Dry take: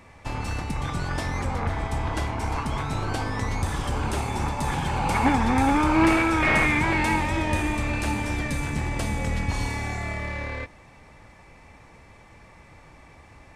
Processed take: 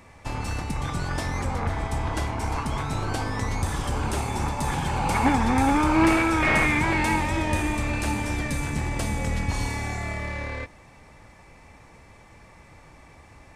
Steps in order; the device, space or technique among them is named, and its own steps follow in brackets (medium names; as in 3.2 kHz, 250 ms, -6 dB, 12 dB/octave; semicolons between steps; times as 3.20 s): exciter from parts (in parallel at -7 dB: high-pass 4.2 kHz 12 dB/octave + saturation -31 dBFS, distortion -18 dB)